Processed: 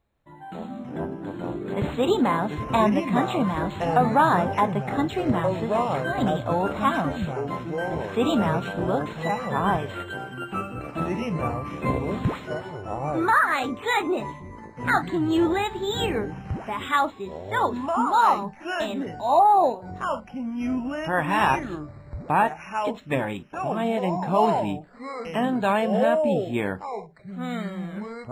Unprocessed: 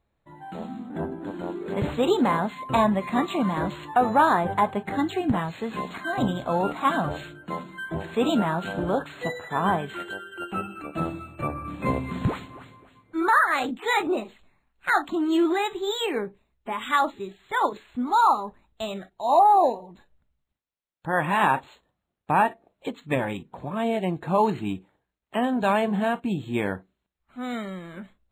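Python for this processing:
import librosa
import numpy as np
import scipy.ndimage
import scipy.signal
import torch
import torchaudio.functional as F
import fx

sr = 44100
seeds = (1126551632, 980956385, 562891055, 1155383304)

y = fx.echo_pitch(x, sr, ms=152, semitones=-5, count=2, db_per_echo=-6.0)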